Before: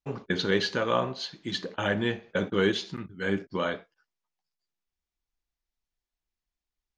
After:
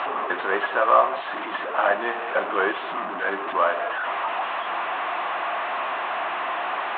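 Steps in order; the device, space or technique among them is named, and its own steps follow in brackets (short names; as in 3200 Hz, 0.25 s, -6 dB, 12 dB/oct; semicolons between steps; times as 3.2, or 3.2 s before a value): digital answering machine (BPF 340–3400 Hz; delta modulation 16 kbps, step -29 dBFS; speaker cabinet 460–4000 Hz, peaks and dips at 460 Hz -6 dB, 700 Hz +8 dB, 1100 Hz +8 dB, 2200 Hz -6 dB, 3100 Hz -5 dB); gain +7.5 dB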